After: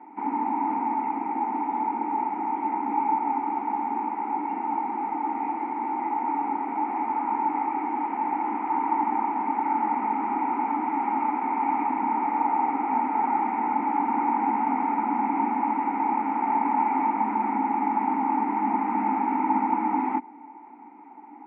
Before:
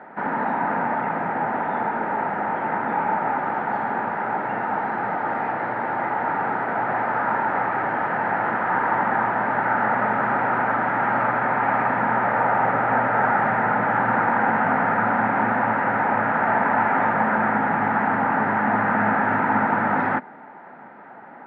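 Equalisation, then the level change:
formant filter u
linear-phase brick-wall high-pass 190 Hz
+7.0 dB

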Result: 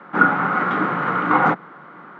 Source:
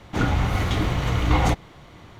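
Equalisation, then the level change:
Butterworth high-pass 160 Hz 48 dB per octave
low-pass with resonance 1,400 Hz, resonance Q 4.8
notch filter 660 Hz, Q 12
+3.0 dB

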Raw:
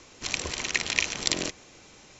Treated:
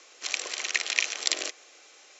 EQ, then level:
Bessel high-pass filter 580 Hz, order 6
notch filter 950 Hz, Q 6.2
0.0 dB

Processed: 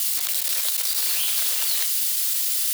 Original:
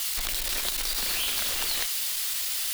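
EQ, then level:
elliptic high-pass filter 450 Hz, stop band 50 dB
high-shelf EQ 4,200 Hz +12 dB
−3.0 dB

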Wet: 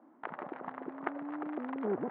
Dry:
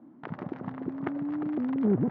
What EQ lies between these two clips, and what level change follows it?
high-pass filter 620 Hz 12 dB per octave
high-frequency loss of the air 450 metres
+5.0 dB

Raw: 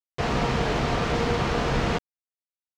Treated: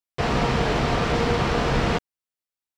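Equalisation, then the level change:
notch filter 6,500 Hz, Q 24
+2.5 dB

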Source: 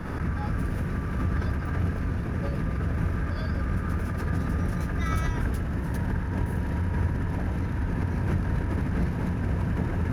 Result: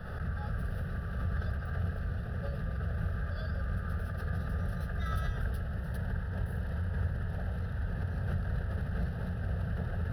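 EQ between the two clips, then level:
phaser with its sweep stopped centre 1,500 Hz, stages 8
−5.0 dB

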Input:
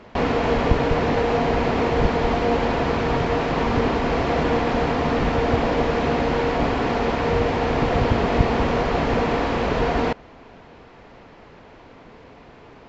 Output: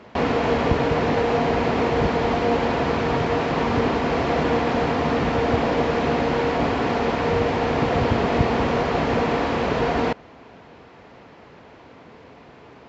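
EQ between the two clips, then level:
high-pass filter 74 Hz
0.0 dB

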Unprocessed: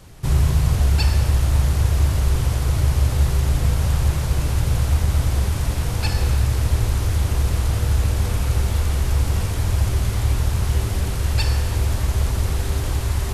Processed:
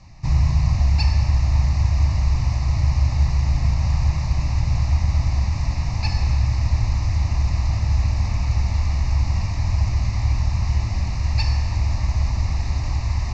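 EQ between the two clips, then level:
inverse Chebyshev low-pass filter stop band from 11,000 Hz, stop band 40 dB
phaser with its sweep stopped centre 2,200 Hz, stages 8
0.0 dB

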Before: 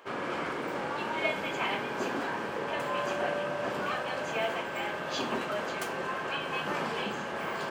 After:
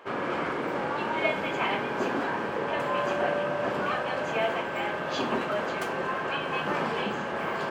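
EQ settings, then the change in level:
high-shelf EQ 4,000 Hz −9.5 dB
+4.5 dB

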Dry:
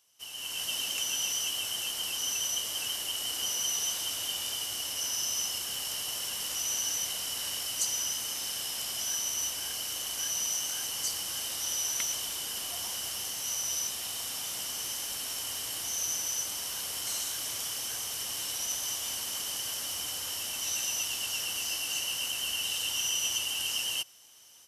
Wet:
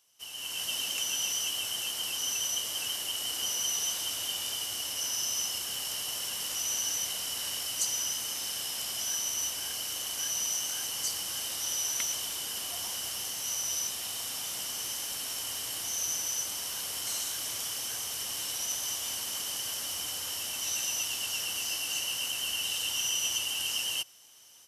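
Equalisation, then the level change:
high-pass filter 54 Hz
0.0 dB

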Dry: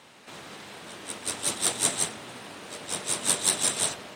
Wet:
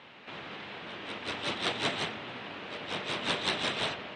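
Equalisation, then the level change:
transistor ladder low-pass 3,800 Hz, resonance 30%
+7.0 dB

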